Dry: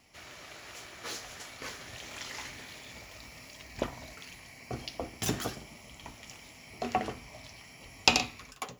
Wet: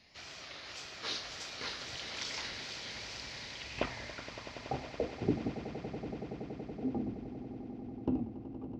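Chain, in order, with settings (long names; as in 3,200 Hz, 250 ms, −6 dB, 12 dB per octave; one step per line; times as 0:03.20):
low-pass filter sweep 4,700 Hz → 270 Hz, 0:03.37–0:05.53
tape wow and flutter 150 cents
echo that builds up and dies away 94 ms, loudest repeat 8, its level −15 dB
level −2 dB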